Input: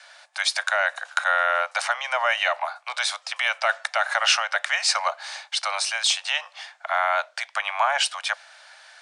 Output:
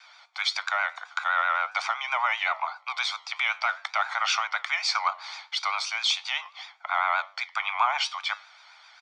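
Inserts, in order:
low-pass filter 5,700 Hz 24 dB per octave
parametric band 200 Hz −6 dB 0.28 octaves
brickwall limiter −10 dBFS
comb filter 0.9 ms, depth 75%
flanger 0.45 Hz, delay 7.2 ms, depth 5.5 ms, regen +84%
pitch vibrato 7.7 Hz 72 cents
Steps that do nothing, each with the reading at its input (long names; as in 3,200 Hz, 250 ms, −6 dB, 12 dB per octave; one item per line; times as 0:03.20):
parametric band 200 Hz: nothing at its input below 450 Hz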